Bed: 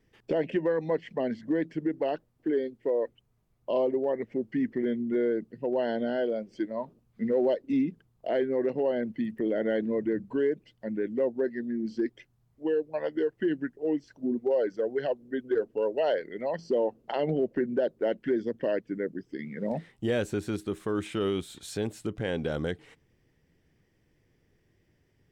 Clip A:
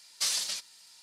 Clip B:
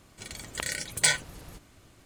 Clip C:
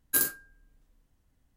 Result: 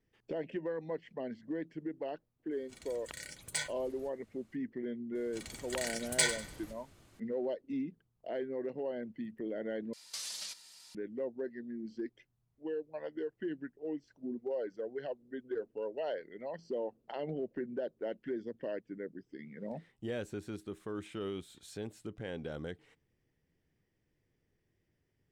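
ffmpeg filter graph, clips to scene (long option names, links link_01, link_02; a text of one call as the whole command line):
ffmpeg -i bed.wav -i cue0.wav -i cue1.wav -filter_complex "[2:a]asplit=2[link_01][link_02];[0:a]volume=-10.5dB[link_03];[link_02]aecho=1:1:97|194|291|388:0.251|0.0879|0.0308|0.0108[link_04];[1:a]acompressor=threshold=-37dB:ratio=6:attack=3.2:release=140:knee=1:detection=peak[link_05];[link_03]asplit=2[link_06][link_07];[link_06]atrim=end=9.934[link_08];[link_05]atrim=end=1.02,asetpts=PTS-STARTPTS,volume=-1dB[link_09];[link_07]atrim=start=10.946[link_10];[link_01]atrim=end=2.05,asetpts=PTS-STARTPTS,volume=-13.5dB,afade=type=in:duration=0.004:curve=hsin,afade=type=out:start_time=2.046:duration=0.004:curve=hsin,adelay=2510[link_11];[link_04]atrim=end=2.05,asetpts=PTS-STARTPTS,volume=-6dB,afade=type=in:duration=0.004:curve=hsin,afade=type=out:start_time=2.046:duration=0.004:curve=hsin,adelay=5150[link_12];[link_08][link_09]acrossfade=duration=0.004:curve1=hsin:curve2=hsin[link_13];[link_13][link_10]acrossfade=duration=0.004:curve1=hsin:curve2=hsin[link_14];[link_14][link_11][link_12]amix=inputs=3:normalize=0" out.wav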